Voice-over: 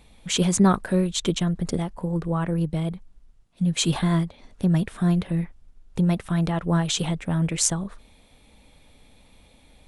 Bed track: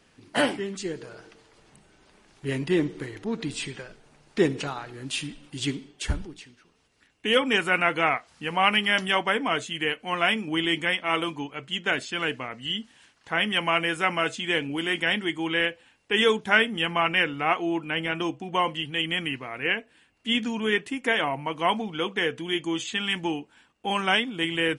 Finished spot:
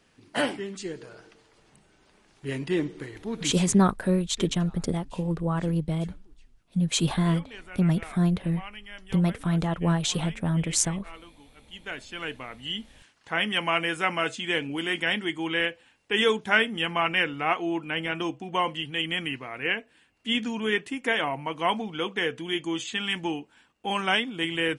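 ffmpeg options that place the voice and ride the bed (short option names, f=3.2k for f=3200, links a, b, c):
-filter_complex "[0:a]adelay=3150,volume=-2dB[a];[1:a]volume=16.5dB,afade=t=out:st=3.55:d=0.38:silence=0.125893,afade=t=in:st=11.54:d=1.41:silence=0.105925[b];[a][b]amix=inputs=2:normalize=0"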